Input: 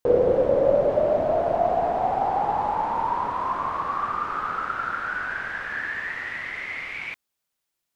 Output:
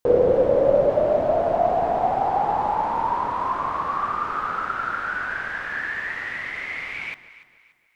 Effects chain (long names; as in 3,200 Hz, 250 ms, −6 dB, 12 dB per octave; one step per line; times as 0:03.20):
delay that swaps between a low-pass and a high-pass 145 ms, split 890 Hz, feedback 60%, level −12 dB
level +1.5 dB